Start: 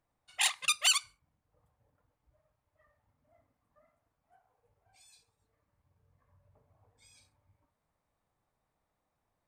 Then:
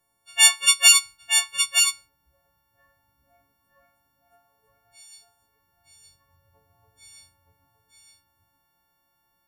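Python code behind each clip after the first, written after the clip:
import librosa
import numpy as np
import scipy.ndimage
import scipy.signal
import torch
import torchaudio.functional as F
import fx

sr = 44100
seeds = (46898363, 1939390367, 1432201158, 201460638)

y = fx.freq_snap(x, sr, grid_st=4)
y = y + 10.0 ** (-5.5 / 20.0) * np.pad(y, (int(917 * sr / 1000.0), 0))[:len(y)]
y = y * 10.0 ** (4.0 / 20.0)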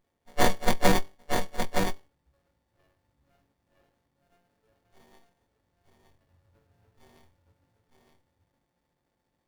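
y = fx.running_max(x, sr, window=33)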